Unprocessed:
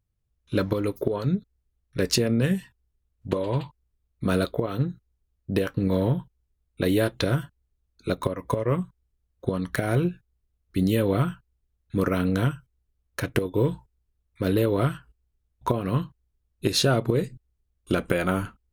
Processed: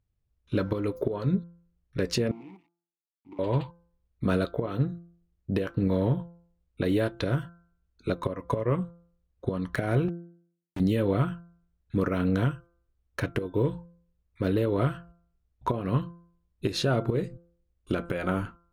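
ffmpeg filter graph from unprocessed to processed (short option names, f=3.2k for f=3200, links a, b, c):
-filter_complex "[0:a]asettb=1/sr,asplit=3[a][b][c];[a]atrim=end=2.314[d];[b]atrim=start=2.31:end=3.39,asetpts=PTS-STARTPTS,afade=t=in:d=0.004:c=qsin,afade=t=out:st=1.076:d=0.004:c=qsin,acrusher=bits=5:dc=4:mix=0:aa=0.000001,acompressor=threshold=-29dB:ratio=6:attack=3.2:release=140:knee=1:detection=peak,asplit=3[e][f][g];[e]bandpass=f=300:t=q:w=8,volume=0dB[h];[f]bandpass=f=870:t=q:w=8,volume=-6dB[i];[g]bandpass=f=2.24k:t=q:w=8,volume=-9dB[j];[h][i][j]amix=inputs=3:normalize=0[k];[c]atrim=start=3.386[l];[d][k]acrossfade=d=0.004:c1=hsin:c2=qsin[m];[m][l]acrossfade=d=0.004:c1=qsin:c2=hsin,asettb=1/sr,asplit=3[n][o][p];[n]atrim=end=10.084[q];[o]atrim=start=10.08:end=10.8,asetpts=PTS-STARTPTS,afade=t=in:d=0.004:c=qsin,afade=t=out:st=0.716:d=0.004:c=qsin,highpass=f=46:w=0.5412,highpass=f=46:w=1.3066,acrusher=bits=3:mix=0:aa=0.5,asoftclip=type=hard:threshold=-28dB[r];[p]atrim=start=10.796[s];[q][r]acrossfade=d=0.004:c1=hsin:c2=qsin[t];[t][s]acrossfade=d=0.004:c1=qsin:c2=hsin,lowpass=f=2.9k:p=1,bandreject=f=171.3:t=h:w=4,bandreject=f=342.6:t=h:w=4,bandreject=f=513.9:t=h:w=4,bandreject=f=685.2:t=h:w=4,bandreject=f=856.5:t=h:w=4,bandreject=f=1.0278k:t=h:w=4,bandreject=f=1.1991k:t=h:w=4,bandreject=f=1.3704k:t=h:w=4,bandreject=f=1.5417k:t=h:w=4,alimiter=limit=-15dB:level=0:latency=1:release=286"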